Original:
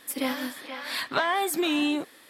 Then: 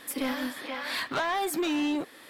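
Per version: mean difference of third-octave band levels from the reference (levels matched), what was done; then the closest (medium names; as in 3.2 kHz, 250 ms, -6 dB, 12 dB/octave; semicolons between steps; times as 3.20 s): 3.0 dB: block-companded coder 7-bit; treble shelf 4.1 kHz -5.5 dB; in parallel at -1 dB: compression, threshold -40 dBFS, peak gain reduction 17.5 dB; on the sum: saturation -23.5 dBFS, distortion -13 dB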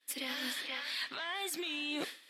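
5.5 dB: frequency weighting D; expander -34 dBFS; peak limiter -16 dBFS, peak gain reduction 10 dB; reverse; compression 16:1, threshold -38 dBFS, peak gain reduction 17.5 dB; reverse; trim +3 dB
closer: first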